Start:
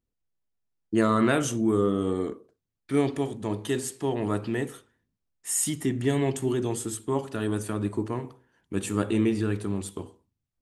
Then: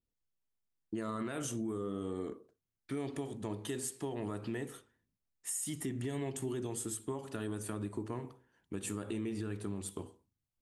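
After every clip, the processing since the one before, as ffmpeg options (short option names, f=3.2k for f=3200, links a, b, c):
-af "adynamicequalizer=threshold=0.00398:dfrequency=9900:dqfactor=1.1:tfrequency=9900:tqfactor=1.1:attack=5:release=100:ratio=0.375:range=2.5:mode=boostabove:tftype=bell,alimiter=limit=-19.5dB:level=0:latency=1:release=124,acompressor=threshold=-30dB:ratio=2.5,volume=-5.5dB"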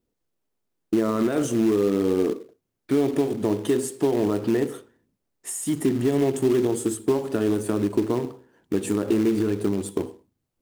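-filter_complex "[0:a]equalizer=f=380:t=o:w=2.4:g=12.5,asplit=2[a][b];[b]acrusher=bits=2:mode=log:mix=0:aa=0.000001,volume=-6.5dB[c];[a][c]amix=inputs=2:normalize=0,volume=2.5dB"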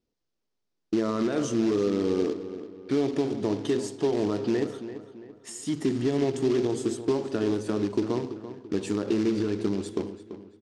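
-filter_complex "[0:a]lowpass=f=5.3k:t=q:w=1.9,asplit=2[a][b];[b]adelay=337,lowpass=f=3.5k:p=1,volume=-12dB,asplit=2[c][d];[d]adelay=337,lowpass=f=3.5k:p=1,volume=0.42,asplit=2[e][f];[f]adelay=337,lowpass=f=3.5k:p=1,volume=0.42,asplit=2[g][h];[h]adelay=337,lowpass=f=3.5k:p=1,volume=0.42[i];[a][c][e][g][i]amix=inputs=5:normalize=0,volume=-4dB"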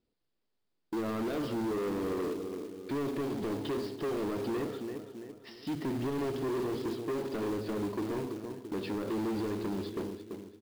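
-af "asoftclip=type=tanh:threshold=-31dB,aresample=11025,aresample=44100,acrusher=bits=4:mode=log:mix=0:aa=0.000001"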